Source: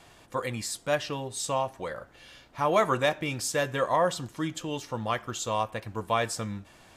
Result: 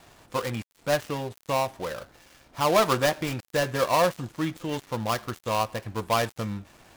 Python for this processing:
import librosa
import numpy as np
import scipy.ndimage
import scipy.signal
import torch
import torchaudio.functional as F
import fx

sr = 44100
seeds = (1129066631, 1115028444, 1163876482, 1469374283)

y = fx.dead_time(x, sr, dead_ms=0.15)
y = y * 10.0 ** (3.0 / 20.0)